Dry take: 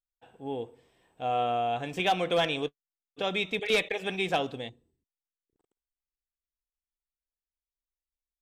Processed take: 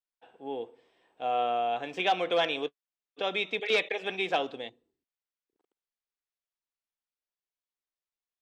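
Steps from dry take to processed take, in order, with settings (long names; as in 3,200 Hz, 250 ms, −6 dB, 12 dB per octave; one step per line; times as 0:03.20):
three-way crossover with the lows and the highs turned down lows −18 dB, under 250 Hz, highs −18 dB, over 6,100 Hz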